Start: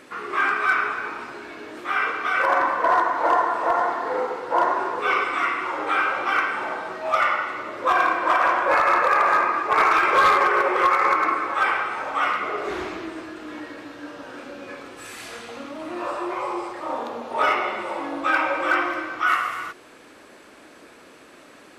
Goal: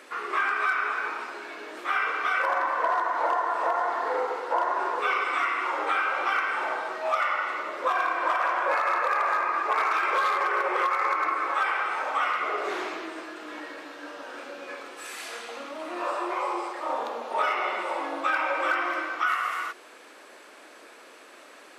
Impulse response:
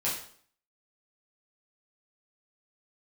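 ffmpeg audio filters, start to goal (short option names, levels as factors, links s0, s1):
-af "highpass=430,acompressor=threshold=0.0794:ratio=6"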